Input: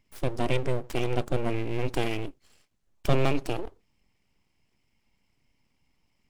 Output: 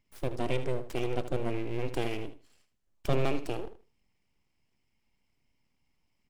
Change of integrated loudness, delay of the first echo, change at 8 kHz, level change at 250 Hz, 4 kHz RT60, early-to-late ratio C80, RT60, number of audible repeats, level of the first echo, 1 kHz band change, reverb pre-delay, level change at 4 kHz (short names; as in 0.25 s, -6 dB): -4.0 dB, 77 ms, -5.0 dB, -4.0 dB, none, none, none, 2, -12.0 dB, -4.5 dB, none, -5.0 dB